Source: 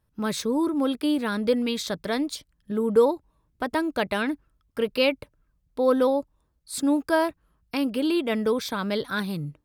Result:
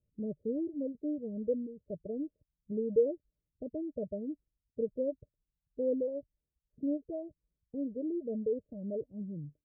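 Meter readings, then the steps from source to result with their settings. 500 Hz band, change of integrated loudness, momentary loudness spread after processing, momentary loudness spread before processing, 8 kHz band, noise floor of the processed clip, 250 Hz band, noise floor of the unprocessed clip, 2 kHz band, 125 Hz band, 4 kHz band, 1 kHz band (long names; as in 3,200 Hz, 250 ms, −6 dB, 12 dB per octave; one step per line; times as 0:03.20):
−9.5 dB, −11.0 dB, 12 LU, 11 LU, below −40 dB, below −85 dBFS, −11.0 dB, −71 dBFS, below −40 dB, can't be measured, below −40 dB, below −30 dB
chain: Chebyshev low-pass with heavy ripple 620 Hz, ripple 3 dB
reverb reduction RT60 1.5 s
level −7 dB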